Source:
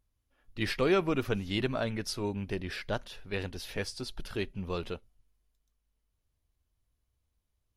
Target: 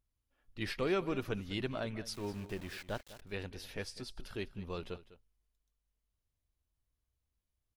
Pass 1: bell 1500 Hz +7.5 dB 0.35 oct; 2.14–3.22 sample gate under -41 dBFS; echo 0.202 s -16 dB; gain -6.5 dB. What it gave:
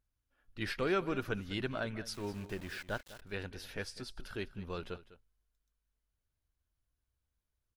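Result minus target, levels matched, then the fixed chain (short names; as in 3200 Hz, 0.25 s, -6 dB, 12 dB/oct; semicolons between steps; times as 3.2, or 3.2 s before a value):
2000 Hz band +2.5 dB
2.14–3.22 sample gate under -41 dBFS; echo 0.202 s -16 dB; gain -6.5 dB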